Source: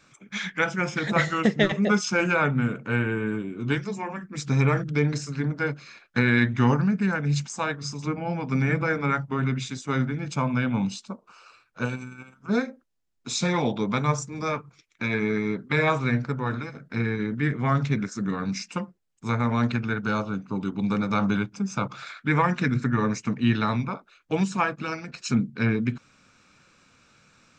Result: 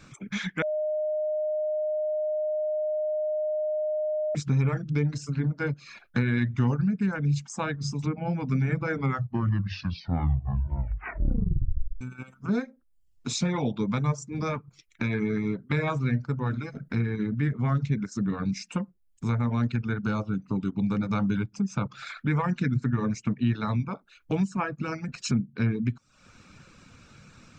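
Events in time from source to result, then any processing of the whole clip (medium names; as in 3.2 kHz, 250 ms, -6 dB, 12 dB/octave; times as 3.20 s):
0.62–4.35 s: bleep 613 Hz -21.5 dBFS
8.93 s: tape stop 3.08 s
24.42–25.18 s: peaking EQ 3.7 kHz -8.5 dB 0.66 oct
whole clip: reverb removal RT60 0.52 s; bass shelf 240 Hz +12 dB; compression 2:1, threshold -37 dBFS; trim +4 dB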